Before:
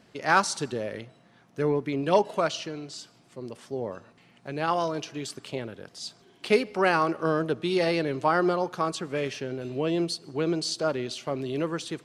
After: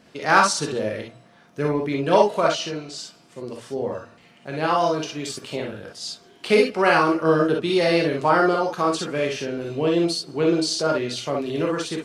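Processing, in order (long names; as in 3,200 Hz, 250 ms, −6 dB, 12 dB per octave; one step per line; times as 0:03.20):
mains-hum notches 60/120 Hz
reverb whose tail is shaped and stops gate 80 ms rising, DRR 0 dB
level +3 dB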